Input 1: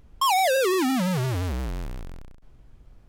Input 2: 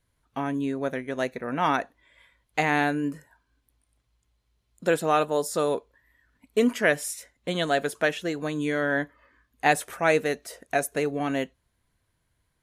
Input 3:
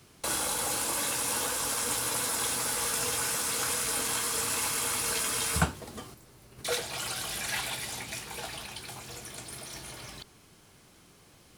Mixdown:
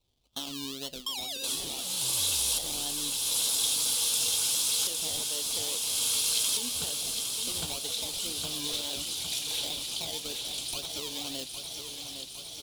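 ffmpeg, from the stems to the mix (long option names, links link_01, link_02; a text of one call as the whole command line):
ffmpeg -i stem1.wav -i stem2.wav -i stem3.wav -filter_complex "[0:a]equalizer=frequency=250:width_type=o:width=2.1:gain=-14.5,adelay=850,volume=-6dB[link_01];[1:a]alimiter=limit=-15dB:level=0:latency=1,acrusher=samples=26:mix=1:aa=0.000001:lfo=1:lforange=15.6:lforate=2,flanger=delay=2.1:depth=2.7:regen=-72:speed=0.65:shape=triangular,volume=-0.5dB,asplit=3[link_02][link_03][link_04];[link_03]volume=-14.5dB[link_05];[2:a]adelay=1200,volume=1dB,asplit=2[link_06][link_07];[link_07]volume=-9dB[link_08];[link_04]apad=whole_len=563495[link_09];[link_06][link_09]sidechaincompress=threshold=-39dB:ratio=8:attack=16:release=359[link_10];[link_01][link_02]amix=inputs=2:normalize=0,alimiter=level_in=2.5dB:limit=-24dB:level=0:latency=1:release=354,volume=-2.5dB,volume=0dB[link_11];[link_05][link_08]amix=inputs=2:normalize=0,aecho=0:1:809|1618|2427|3236|4045|4854|5663|6472:1|0.55|0.303|0.166|0.0915|0.0503|0.0277|0.0152[link_12];[link_10][link_11][link_12]amix=inputs=3:normalize=0,highshelf=frequency=2500:width_type=q:width=3:gain=11,acompressor=threshold=-44dB:ratio=1.5" out.wav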